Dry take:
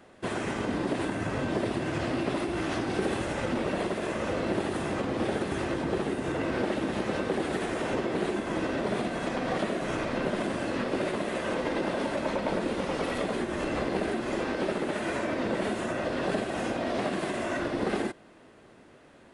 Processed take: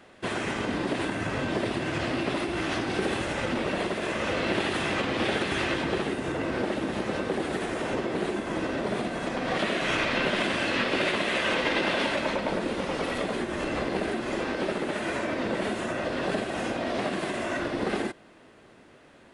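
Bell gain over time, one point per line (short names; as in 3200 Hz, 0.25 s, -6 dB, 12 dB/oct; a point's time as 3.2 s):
bell 2900 Hz 2.2 oct
3.97 s +5.5 dB
4.58 s +11.5 dB
5.77 s +11.5 dB
6.37 s +1.5 dB
9.35 s +1.5 dB
9.78 s +13 dB
12.05 s +13 dB
12.5 s +3 dB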